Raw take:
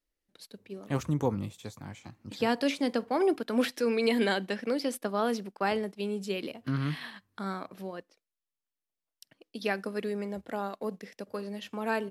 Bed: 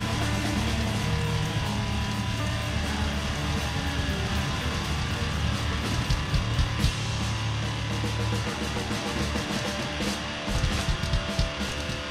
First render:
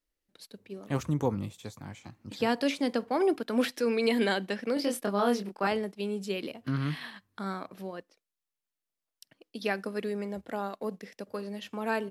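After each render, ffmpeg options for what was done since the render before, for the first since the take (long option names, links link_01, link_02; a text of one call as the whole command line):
ffmpeg -i in.wav -filter_complex "[0:a]asettb=1/sr,asplit=3[link_01][link_02][link_03];[link_01]atrim=end=4.744[link_04];[link_02]atrim=start=4.74:end=5.67,asetpts=PTS-STARTPTS,afade=type=in:duration=0.004:curve=qsin,afade=type=out:start_time=0.926:duration=0.004:curve=qsin,asplit=2[link_05][link_06];[link_06]adelay=25,volume=-3dB[link_07];[link_05][link_07]amix=inputs=2:normalize=0,atrim=end_sample=41013[link_08];[link_03]atrim=start=5.666[link_09];[link_04][link_08]acrossfade=duration=0.004:curve1=hsin:curve2=qsin[link_10];[link_10][link_09]acrossfade=duration=0.004:curve1=qsin:curve2=hsin" out.wav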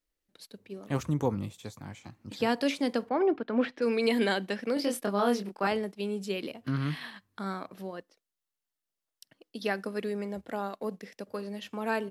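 ffmpeg -i in.wav -filter_complex "[0:a]asettb=1/sr,asplit=3[link_01][link_02][link_03];[link_01]atrim=end=3.094[link_04];[link_02]atrim=start=3.09:end=3.82,asetpts=PTS-STARTPTS,afade=type=in:duration=0.004:curve=qsin,afade=type=out:start_time=0.726:duration=0.004:curve=qsin,lowpass=2200[link_05];[link_03]atrim=start=3.816[link_06];[link_04][link_05]acrossfade=duration=0.004:curve1=hsin:curve2=qsin[link_07];[link_07][link_06]acrossfade=duration=0.004:curve1=qsin:curve2=hsin,asettb=1/sr,asplit=3[link_08][link_09][link_10];[link_08]atrim=end=7.774[link_11];[link_09]atrim=start=7.77:end=9.82,asetpts=PTS-STARTPTS,afade=type=in:duration=0.004:curve=qsin,afade=type=out:start_time=2.046:duration=0.004:curve=qsin,bandreject=frequency=2400:width=12[link_12];[link_10]atrim=start=9.816[link_13];[link_11][link_12]acrossfade=duration=0.004:curve1=hsin:curve2=qsin[link_14];[link_14][link_13]acrossfade=duration=0.004:curve1=qsin:curve2=hsin" out.wav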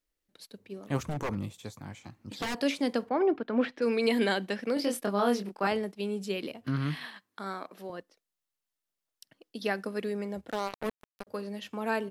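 ffmpeg -i in.wav -filter_complex "[0:a]asettb=1/sr,asplit=3[link_01][link_02][link_03];[link_01]atrim=end=1.034[link_04];[link_02]atrim=start=1.03:end=2.6,asetpts=PTS-STARTPTS,afade=type=in:duration=0.004:curve=qsin,afade=type=out:start_time=1.566:duration=0.004:curve=qsin,aeval=exprs='0.0473*(abs(mod(val(0)/0.0473+3,4)-2)-1)':channel_layout=same[link_05];[link_03]atrim=start=2.596[link_06];[link_04][link_05]acrossfade=duration=0.004:curve1=hsin:curve2=qsin[link_07];[link_07][link_06]acrossfade=duration=0.004:curve1=qsin:curve2=hsin,asettb=1/sr,asplit=3[link_08][link_09][link_10];[link_08]atrim=end=7.054[link_11];[link_09]atrim=start=7.05:end=7.9,asetpts=PTS-STARTPTS,afade=type=in:duration=0.004:curve=qsin,afade=type=out:start_time=0.846:duration=0.004:curve=qsin,highpass=280[link_12];[link_10]atrim=start=7.896[link_13];[link_11][link_12]acrossfade=duration=0.004:curve1=hsin:curve2=qsin[link_14];[link_14][link_13]acrossfade=duration=0.004:curve1=qsin:curve2=hsin,asettb=1/sr,asplit=3[link_15][link_16][link_17];[link_15]atrim=end=10.514[link_18];[link_16]atrim=start=10.51:end=11.27,asetpts=PTS-STARTPTS,afade=type=in:duration=0.004:curve=qsin,afade=type=out:start_time=0.756:duration=0.004:curve=qsin,acrusher=bits=4:mix=0:aa=0.5[link_19];[link_17]atrim=start=11.266[link_20];[link_18][link_19]acrossfade=duration=0.004:curve1=hsin:curve2=qsin[link_21];[link_21][link_20]acrossfade=duration=0.004:curve1=qsin:curve2=hsin" out.wav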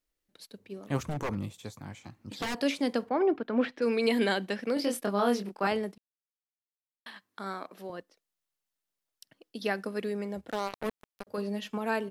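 ffmpeg -i in.wav -filter_complex "[0:a]asettb=1/sr,asplit=3[link_01][link_02][link_03];[link_01]atrim=end=11.374[link_04];[link_02]atrim=start=11.37:end=11.78,asetpts=PTS-STARTPTS,afade=type=in:duration=0.004:curve=qsin,afade=type=out:start_time=0.406:duration=0.004:curve=qsin,aecho=1:1:4.7:0.8,atrim=end_sample=18081[link_05];[link_03]atrim=start=11.776[link_06];[link_04][link_05]acrossfade=duration=0.004:curve1=hsin:curve2=qsin[link_07];[link_07][link_06]acrossfade=duration=0.004:curve1=qsin:curve2=hsin,asplit=3[link_08][link_09][link_10];[link_08]atrim=end=5.98,asetpts=PTS-STARTPTS,afade=type=out:start_time=5.976:duration=0.004:curve=hsin[link_11];[link_09]atrim=start=5.98:end=7.06,asetpts=PTS-STARTPTS,volume=0[link_12];[link_10]atrim=start=7.06,asetpts=PTS-STARTPTS,afade=type=in:duration=0.004:curve=hsin[link_13];[link_11][link_12][link_13]concat=n=3:v=0:a=1" out.wav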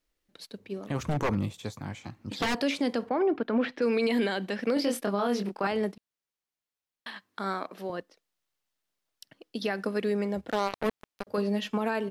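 ffmpeg -i in.wav -filter_complex "[0:a]acrossover=split=6200[link_01][link_02];[link_01]acontrast=37[link_03];[link_03][link_02]amix=inputs=2:normalize=0,alimiter=limit=-18.5dB:level=0:latency=1:release=105" out.wav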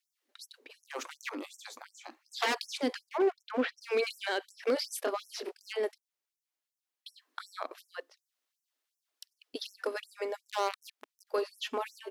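ffmpeg -i in.wav -af "asoftclip=type=hard:threshold=-20.5dB,afftfilt=real='re*gte(b*sr/1024,220*pow(5500/220,0.5+0.5*sin(2*PI*2.7*pts/sr)))':imag='im*gte(b*sr/1024,220*pow(5500/220,0.5+0.5*sin(2*PI*2.7*pts/sr)))':win_size=1024:overlap=0.75" out.wav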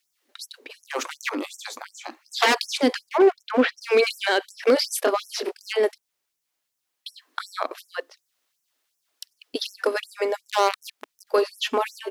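ffmpeg -i in.wav -af "volume=11dB" out.wav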